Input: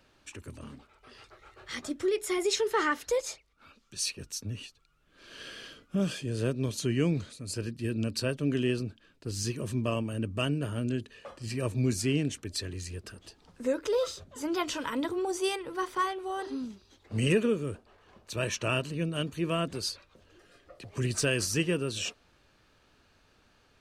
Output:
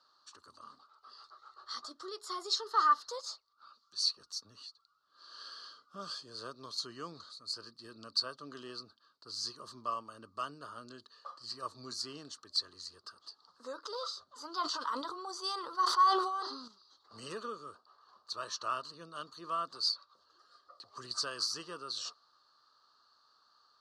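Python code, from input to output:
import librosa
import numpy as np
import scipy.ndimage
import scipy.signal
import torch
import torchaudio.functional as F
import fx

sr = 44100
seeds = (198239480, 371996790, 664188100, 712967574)

y = fx.double_bandpass(x, sr, hz=2300.0, octaves=1.9)
y = fx.sustainer(y, sr, db_per_s=50.0, at=(14.61, 16.68))
y = y * librosa.db_to_amplitude(7.0)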